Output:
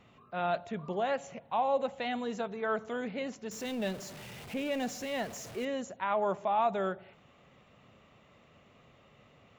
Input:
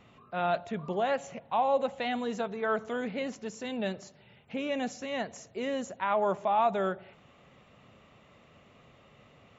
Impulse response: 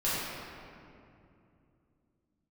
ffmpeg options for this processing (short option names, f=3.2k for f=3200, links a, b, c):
-filter_complex "[0:a]asettb=1/sr,asplit=3[a][b][c];[a]atrim=end=3.514[d];[b]atrim=start=3.51:end=5.65,asetpts=PTS-STARTPTS,afade=t=in:d=0.004:c=qsin,afade=t=out:st=2.136:d=0.004:c=qsin,aeval=exprs='val(0)+0.5*0.0106*sgn(val(0))':c=same[e];[c]atrim=start=5.646[f];[d][e]acrossfade=d=0.004:c1=hsin:c2=qsin[g];[g][f]acrossfade=d=0.004:c1=qsin:c2=hsin,volume=-2.5dB"